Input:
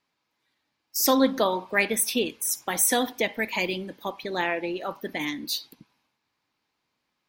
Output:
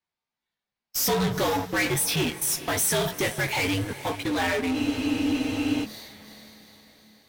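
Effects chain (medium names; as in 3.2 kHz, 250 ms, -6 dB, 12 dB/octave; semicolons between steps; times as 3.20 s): chorus 2.4 Hz, delay 16 ms, depth 2.2 ms; frequency shift -83 Hz; in parallel at -3 dB: fuzz box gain 38 dB, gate -46 dBFS; on the sum: echo that smears into a reverb 451 ms, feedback 52%, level -15 dB; spectral freeze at 4.77 s, 1.08 s; trim -9 dB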